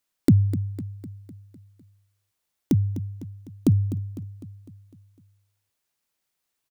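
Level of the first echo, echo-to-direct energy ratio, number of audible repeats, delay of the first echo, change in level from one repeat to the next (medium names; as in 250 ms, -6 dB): -13.0 dB, -11.5 dB, 5, 252 ms, -5.5 dB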